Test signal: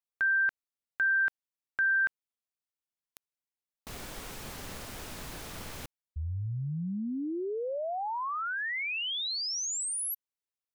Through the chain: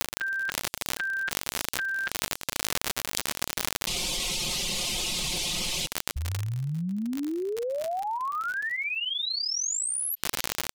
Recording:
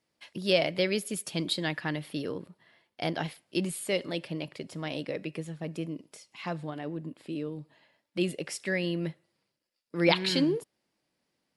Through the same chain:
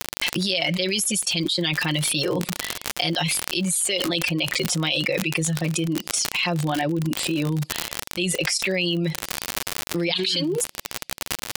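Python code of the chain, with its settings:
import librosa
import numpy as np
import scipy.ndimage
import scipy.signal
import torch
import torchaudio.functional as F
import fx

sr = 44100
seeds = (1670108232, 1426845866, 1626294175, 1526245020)

y = scipy.signal.sosfilt(scipy.signal.butter(2, 9200.0, 'lowpass', fs=sr, output='sos'), x)
y = fx.dereverb_blind(y, sr, rt60_s=0.52)
y = y + 0.88 * np.pad(y, (int(5.6 * sr / 1000.0), 0))[:len(y)]
y = fx.noise_reduce_blind(y, sr, reduce_db=9)
y = fx.high_shelf_res(y, sr, hz=2200.0, db=10.5, q=1.5)
y = fx.gate_hold(y, sr, open_db=-40.0, close_db=-47.0, hold_ms=294.0, range_db=-36, attack_ms=3.9, release_ms=354.0)
y = fx.dmg_crackle(y, sr, seeds[0], per_s=75.0, level_db=-34.0)
y = fx.env_flatten(y, sr, amount_pct=100)
y = y * 10.0 ** (-13.0 / 20.0)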